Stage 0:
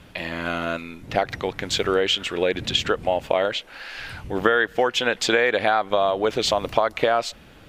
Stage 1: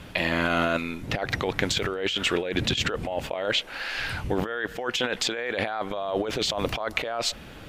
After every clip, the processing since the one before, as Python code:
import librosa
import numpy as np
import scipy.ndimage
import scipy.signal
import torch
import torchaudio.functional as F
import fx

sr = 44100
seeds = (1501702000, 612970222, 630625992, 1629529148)

y = fx.over_compress(x, sr, threshold_db=-27.0, ratio=-1.0)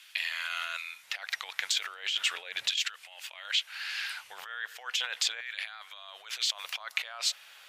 y = fx.tone_stack(x, sr, knobs='10-0-10')
y = fx.filter_lfo_highpass(y, sr, shape='saw_down', hz=0.37, low_hz=540.0, high_hz=1900.0, q=0.73)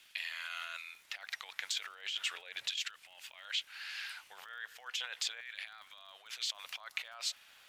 y = fx.dmg_crackle(x, sr, seeds[0], per_s=120.0, level_db=-45.0)
y = F.gain(torch.from_numpy(y), -7.5).numpy()